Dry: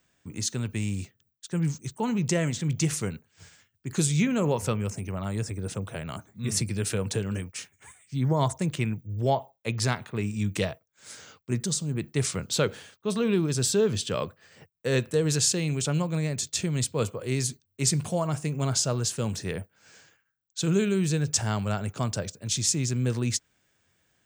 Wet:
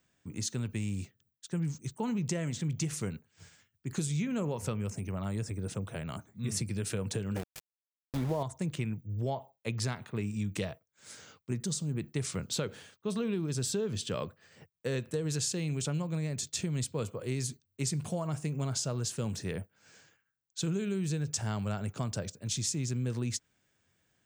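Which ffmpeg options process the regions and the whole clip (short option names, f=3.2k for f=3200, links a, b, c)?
-filter_complex "[0:a]asettb=1/sr,asplit=3[a][b][c];[a]atrim=end=7.364[d];[b]atrim=start=7.36:end=8.43,asetpts=PTS-STARTPTS,afade=t=in:d=0.004:c=qsin,afade=t=out:st=1.066:d=0.004:c=qsin,equalizer=f=600:w=0.8:g=11.5,aeval=exprs='val(0)+0.00794*(sin(2*PI*50*n/s)+sin(2*PI*2*50*n/s)/2+sin(2*PI*3*50*n/s)/3+sin(2*PI*4*50*n/s)/4+sin(2*PI*5*50*n/s)/5)':c=same,aeval=exprs='val(0)*gte(abs(val(0)),0.0422)':c=same[e];[c]atrim=start=8.426[f];[d][e]acrossfade=d=0.004:c1=hsin:c2=qsin[g];[g][f]acrossfade=d=0.004:c1=qsin:c2=hsin,equalizer=f=170:t=o:w=2.3:g=3,acompressor=threshold=-24dB:ratio=6,volume=-5dB"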